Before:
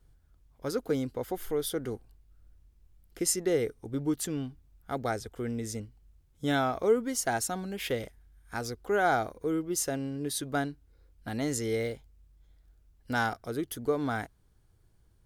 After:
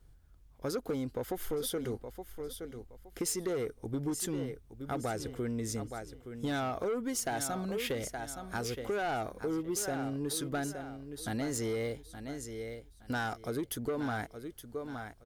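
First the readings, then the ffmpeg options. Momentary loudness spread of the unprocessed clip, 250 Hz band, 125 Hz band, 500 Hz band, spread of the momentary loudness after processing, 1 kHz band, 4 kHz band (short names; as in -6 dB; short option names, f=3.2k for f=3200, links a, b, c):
11 LU, -2.5 dB, -2.0 dB, -4.5 dB, 10 LU, -5.0 dB, -2.0 dB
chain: -af "aecho=1:1:869|1738|2607:0.237|0.0617|0.016,asoftclip=type=tanh:threshold=-25dB,acompressor=threshold=-33dB:ratio=6,volume=2dB"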